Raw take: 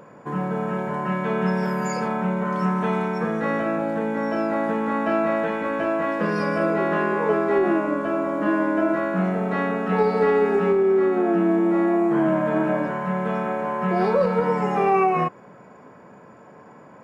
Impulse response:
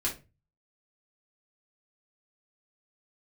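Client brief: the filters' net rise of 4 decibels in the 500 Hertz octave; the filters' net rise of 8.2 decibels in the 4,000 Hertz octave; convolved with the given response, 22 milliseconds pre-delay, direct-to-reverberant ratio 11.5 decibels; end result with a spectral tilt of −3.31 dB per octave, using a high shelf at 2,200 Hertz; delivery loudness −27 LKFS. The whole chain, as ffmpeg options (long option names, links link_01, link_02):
-filter_complex "[0:a]equalizer=frequency=500:width_type=o:gain=5,highshelf=frequency=2200:gain=4,equalizer=frequency=4000:width_type=o:gain=7.5,asplit=2[link_01][link_02];[1:a]atrim=start_sample=2205,adelay=22[link_03];[link_02][link_03]afir=irnorm=-1:irlink=0,volume=-17dB[link_04];[link_01][link_04]amix=inputs=2:normalize=0,volume=-8dB"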